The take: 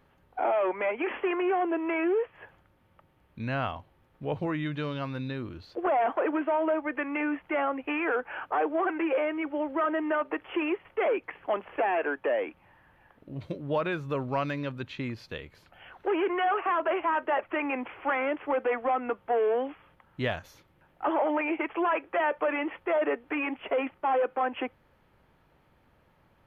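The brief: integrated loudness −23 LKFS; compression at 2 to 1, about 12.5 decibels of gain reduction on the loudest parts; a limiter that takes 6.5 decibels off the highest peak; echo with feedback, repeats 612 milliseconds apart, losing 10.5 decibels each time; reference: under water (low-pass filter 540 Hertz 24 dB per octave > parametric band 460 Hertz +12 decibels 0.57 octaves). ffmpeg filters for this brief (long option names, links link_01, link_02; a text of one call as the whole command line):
ffmpeg -i in.wav -af "acompressor=threshold=-47dB:ratio=2,alimiter=level_in=11dB:limit=-24dB:level=0:latency=1,volume=-11dB,lowpass=frequency=540:width=0.5412,lowpass=frequency=540:width=1.3066,equalizer=frequency=460:width_type=o:width=0.57:gain=12,aecho=1:1:612|1224|1836:0.299|0.0896|0.0269,volume=17.5dB" out.wav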